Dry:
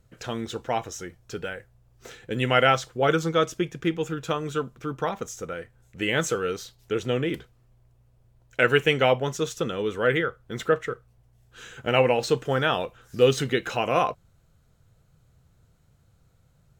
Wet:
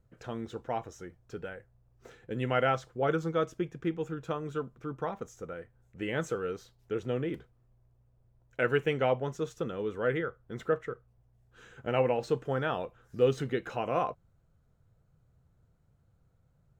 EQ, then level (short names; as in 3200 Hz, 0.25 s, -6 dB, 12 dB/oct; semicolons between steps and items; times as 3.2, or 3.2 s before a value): bell 3200 Hz -5 dB 1.8 oct; high shelf 4300 Hz -11.5 dB; -6.0 dB